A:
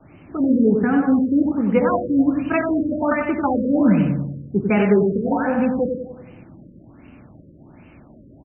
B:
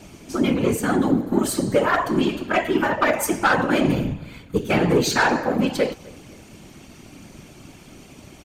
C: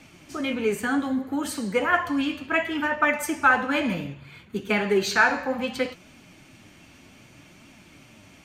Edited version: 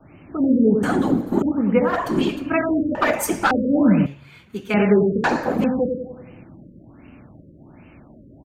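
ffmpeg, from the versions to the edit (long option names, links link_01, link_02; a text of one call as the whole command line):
ffmpeg -i take0.wav -i take1.wav -i take2.wav -filter_complex "[1:a]asplit=4[link_01][link_02][link_03][link_04];[0:a]asplit=6[link_05][link_06][link_07][link_08][link_09][link_10];[link_05]atrim=end=0.832[link_11];[link_01]atrim=start=0.828:end=1.422[link_12];[link_06]atrim=start=1.418:end=2.06[link_13];[link_02]atrim=start=1.82:end=2.54[link_14];[link_07]atrim=start=2.3:end=2.952[link_15];[link_03]atrim=start=2.948:end=3.512[link_16];[link_08]atrim=start=3.508:end=4.062[link_17];[2:a]atrim=start=4.058:end=4.742[link_18];[link_09]atrim=start=4.738:end=5.242[link_19];[link_04]atrim=start=5.238:end=5.642[link_20];[link_10]atrim=start=5.638[link_21];[link_11][link_12]acrossfade=duration=0.004:curve1=hsin:curve2=hsin[link_22];[link_22][link_13]acrossfade=duration=0.004:curve1=hsin:curve2=hsin[link_23];[link_23][link_14]acrossfade=duration=0.24:curve1=tri:curve2=tri[link_24];[link_24][link_15]acrossfade=duration=0.24:curve1=tri:curve2=tri[link_25];[link_25][link_16]acrossfade=duration=0.004:curve1=hsin:curve2=hsin[link_26];[link_26][link_17]acrossfade=duration=0.004:curve1=hsin:curve2=hsin[link_27];[link_27][link_18]acrossfade=duration=0.004:curve1=hsin:curve2=hsin[link_28];[link_28][link_19]acrossfade=duration=0.004:curve1=hsin:curve2=hsin[link_29];[link_29][link_20]acrossfade=duration=0.004:curve1=hsin:curve2=hsin[link_30];[link_30][link_21]acrossfade=duration=0.004:curve1=hsin:curve2=hsin" out.wav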